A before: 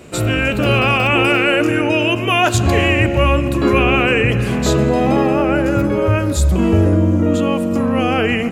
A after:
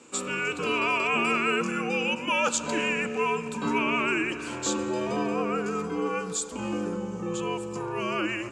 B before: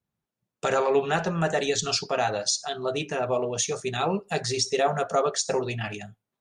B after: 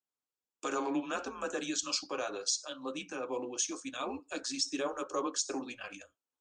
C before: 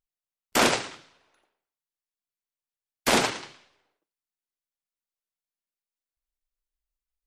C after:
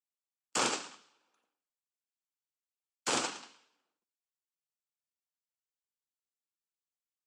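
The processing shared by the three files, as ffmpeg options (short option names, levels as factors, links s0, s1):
-af "highpass=f=410:w=0.5412,highpass=f=410:w=1.3066,equalizer=f=510:t=q:w=4:g=-4,equalizer=f=760:t=q:w=4:g=-8,equalizer=f=2100:t=q:w=4:g=-10,equalizer=f=3900:t=q:w=4:g=-4,equalizer=f=7700:t=q:w=4:g=6,lowpass=f=8600:w=0.5412,lowpass=f=8600:w=1.3066,afreqshift=-120,volume=0.473"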